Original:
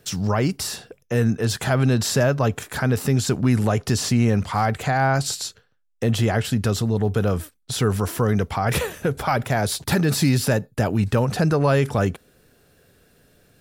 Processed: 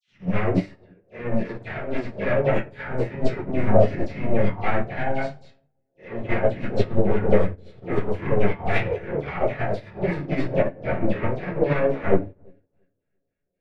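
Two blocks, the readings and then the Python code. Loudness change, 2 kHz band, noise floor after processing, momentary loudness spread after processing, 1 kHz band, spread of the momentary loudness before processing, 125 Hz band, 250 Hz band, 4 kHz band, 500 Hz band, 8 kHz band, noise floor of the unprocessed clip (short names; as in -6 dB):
-3.0 dB, -3.0 dB, -76 dBFS, 9 LU, -4.5 dB, 7 LU, -7.5 dB, -4.5 dB, -15.5 dB, +1.0 dB, under -30 dB, -62 dBFS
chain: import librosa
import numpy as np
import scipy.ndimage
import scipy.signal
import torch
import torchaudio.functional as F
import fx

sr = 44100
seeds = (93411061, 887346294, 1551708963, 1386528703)

p1 = fx.spec_swells(x, sr, rise_s=0.37)
p2 = fx.dynamic_eq(p1, sr, hz=310.0, q=1.5, threshold_db=-30.0, ratio=4.0, max_db=3)
p3 = fx.level_steps(p2, sr, step_db=12)
p4 = p2 + (p3 * librosa.db_to_amplitude(0.0))
p5 = 10.0 ** (-19.5 / 20.0) * np.tanh(p4 / 10.0 ** (-19.5 / 20.0))
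p6 = fx.filter_lfo_lowpass(p5, sr, shape='square', hz=3.7, low_hz=620.0, high_hz=2200.0, q=3.0)
p7 = fx.chorus_voices(p6, sr, voices=2, hz=0.55, base_ms=14, depth_ms=3.5, mix_pct=25)
p8 = fx.dispersion(p7, sr, late='lows', ms=77.0, hz=1800.0)
p9 = p8 + fx.echo_wet_lowpass(p8, sr, ms=339, feedback_pct=46, hz=550.0, wet_db=-13.0, dry=0)
p10 = fx.room_shoebox(p9, sr, seeds[0], volume_m3=39.0, walls='mixed', distance_m=1.0)
p11 = fx.upward_expand(p10, sr, threshold_db=-33.0, expansion=2.5)
y = p11 * librosa.db_to_amplitude(-1.5)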